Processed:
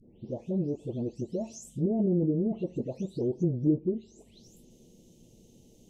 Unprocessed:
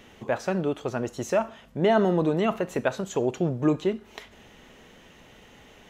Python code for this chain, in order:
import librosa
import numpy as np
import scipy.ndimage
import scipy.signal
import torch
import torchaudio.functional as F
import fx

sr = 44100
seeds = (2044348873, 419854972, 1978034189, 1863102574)

y = fx.spec_delay(x, sr, highs='late', ms=391)
y = scipy.signal.sosfilt(scipy.signal.cheby1(2, 1.0, [330.0, 6200.0], 'bandstop', fs=sr, output='sos'), y)
y = fx.env_lowpass_down(y, sr, base_hz=560.0, full_db=-22.5)